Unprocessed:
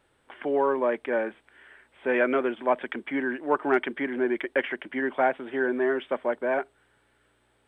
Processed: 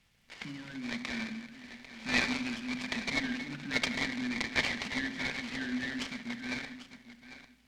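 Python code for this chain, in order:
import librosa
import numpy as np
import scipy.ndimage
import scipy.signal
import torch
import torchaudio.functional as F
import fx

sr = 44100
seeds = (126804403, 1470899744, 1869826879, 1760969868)

p1 = fx.reverse_delay(x, sr, ms=183, wet_db=-11)
p2 = scipy.signal.sosfilt(scipy.signal.ellip(3, 1.0, 40, [220.0, 2100.0], 'bandstop', fs=sr, output='sos'), p1)
p3 = fx.high_shelf(p2, sr, hz=2400.0, db=5.5)
p4 = fx.level_steps(p3, sr, step_db=16)
p5 = p3 + (p4 * librosa.db_to_amplitude(-2.5))
p6 = fx.air_absorb(p5, sr, metres=57.0)
p7 = p6 + fx.echo_single(p6, sr, ms=796, db=-13.0, dry=0)
p8 = fx.room_shoebox(p7, sr, seeds[0], volume_m3=2000.0, walls='furnished', distance_m=1.2)
y = fx.noise_mod_delay(p8, sr, seeds[1], noise_hz=1600.0, depth_ms=0.047)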